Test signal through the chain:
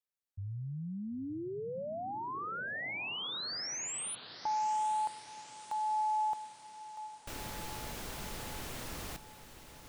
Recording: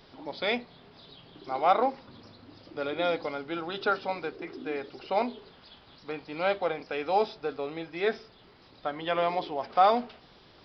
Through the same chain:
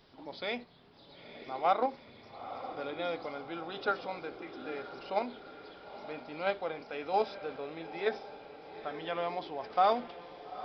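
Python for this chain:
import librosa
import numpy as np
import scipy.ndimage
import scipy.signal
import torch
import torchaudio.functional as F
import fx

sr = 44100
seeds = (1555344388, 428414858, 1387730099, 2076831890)

p1 = fx.level_steps(x, sr, step_db=24)
p2 = x + (p1 * 10.0 ** (-2.0 / 20.0))
p3 = fx.echo_diffused(p2, sr, ms=911, feedback_pct=57, wet_db=-12.0)
y = p3 * 10.0 ** (-8.0 / 20.0)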